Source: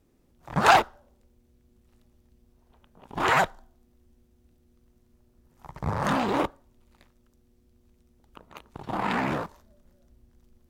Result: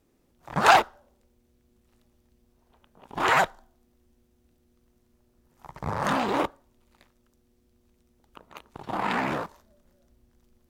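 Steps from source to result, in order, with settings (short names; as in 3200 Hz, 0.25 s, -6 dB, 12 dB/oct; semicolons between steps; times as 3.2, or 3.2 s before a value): low shelf 220 Hz -6.5 dB; gain +1 dB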